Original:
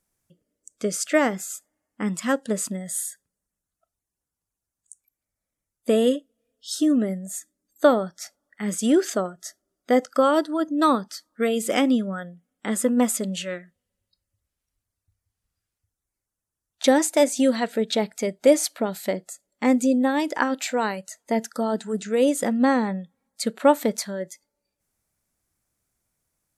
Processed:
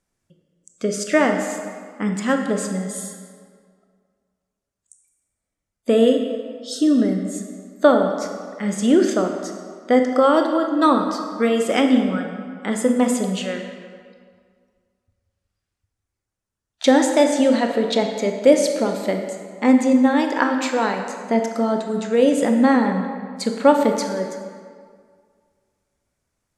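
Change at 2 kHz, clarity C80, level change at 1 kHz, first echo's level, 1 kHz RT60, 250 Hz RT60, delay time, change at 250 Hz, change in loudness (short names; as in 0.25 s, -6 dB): +4.0 dB, 7.0 dB, +4.5 dB, none, 2.0 s, 1.8 s, none, +4.5 dB, +4.0 dB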